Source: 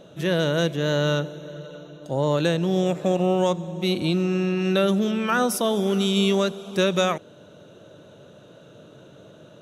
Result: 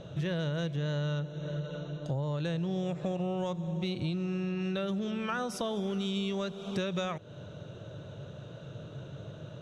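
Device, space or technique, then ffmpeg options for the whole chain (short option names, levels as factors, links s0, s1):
jukebox: -af "lowpass=6100,lowshelf=f=170:t=q:w=1.5:g=9.5,acompressor=threshold=0.0282:ratio=6"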